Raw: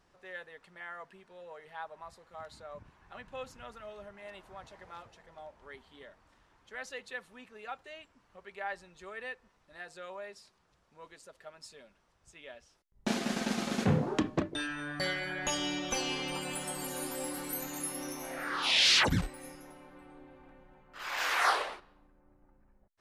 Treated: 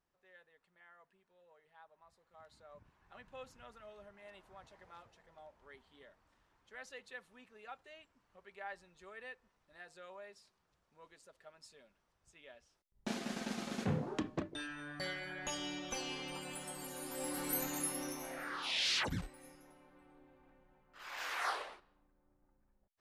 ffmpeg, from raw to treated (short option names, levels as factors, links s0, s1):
-af "volume=1.12,afade=t=in:st=2:d=1.22:silence=0.316228,afade=t=in:st=17.04:d=0.52:silence=0.354813,afade=t=out:st=17.56:d=1.12:silence=0.281838"